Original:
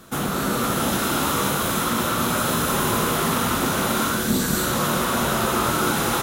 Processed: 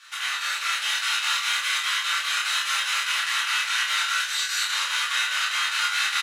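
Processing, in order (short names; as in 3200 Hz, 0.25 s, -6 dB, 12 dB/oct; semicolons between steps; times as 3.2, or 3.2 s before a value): LPF 5600 Hz 12 dB/oct; notch 3400 Hz, Q 19; in parallel at +0.5 dB: vocal rider; on the sum: chopper 4.9 Hz, depth 60%, duty 70%; ladder high-pass 1700 Hz, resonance 30%; doubler 28 ms -3 dB; shoebox room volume 180 m³, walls furnished, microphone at 2.4 m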